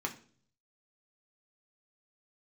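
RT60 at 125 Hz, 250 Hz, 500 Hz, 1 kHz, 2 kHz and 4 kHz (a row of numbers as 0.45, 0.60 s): 0.90, 0.65, 0.55, 0.40, 0.40, 0.45 s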